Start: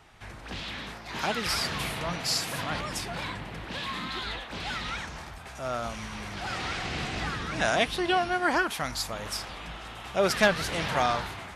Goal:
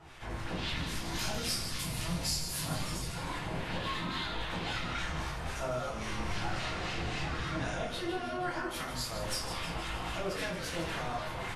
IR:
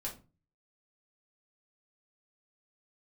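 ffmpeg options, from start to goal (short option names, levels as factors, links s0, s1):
-filter_complex "[0:a]asettb=1/sr,asplit=3[s0][s1][s2];[s0]atrim=end=0.764[s3];[s1]atrim=start=0.76:end=3.14,asetpts=PTS-STARTPTS,afade=t=in:d=0.004:c=qsin,afade=t=out:st=2.376:d=0.004:c=qsin,bass=f=250:g=9,treble=f=4000:g=14[s4];[s2]atrim=start=3.136[s5];[s3][s4]acrossfade=d=0.004:c1=hsin:c2=qsin[s6];[s6][s5]acrossfade=d=0.004:c1=qsin:c2=hsin,acompressor=threshold=0.0141:ratio=12,acrossover=split=1200[s7][s8];[s7]aeval=exprs='val(0)*(1-0.7/2+0.7/2*cos(2*PI*3.7*n/s))':c=same[s9];[s8]aeval=exprs='val(0)*(1-0.7/2-0.7/2*cos(2*PI*3.7*n/s))':c=same[s10];[s9][s10]amix=inputs=2:normalize=0,asplit=9[s11][s12][s13][s14][s15][s16][s17][s18][s19];[s12]adelay=156,afreqshift=-110,volume=0.355[s20];[s13]adelay=312,afreqshift=-220,volume=0.216[s21];[s14]adelay=468,afreqshift=-330,volume=0.132[s22];[s15]adelay=624,afreqshift=-440,volume=0.0804[s23];[s16]adelay=780,afreqshift=-550,volume=0.049[s24];[s17]adelay=936,afreqshift=-660,volume=0.0299[s25];[s18]adelay=1092,afreqshift=-770,volume=0.0182[s26];[s19]adelay=1248,afreqshift=-880,volume=0.0111[s27];[s11][s20][s21][s22][s23][s24][s25][s26][s27]amix=inputs=9:normalize=0[s28];[1:a]atrim=start_sample=2205,asetrate=26460,aresample=44100[s29];[s28][s29]afir=irnorm=-1:irlink=0,volume=1.5"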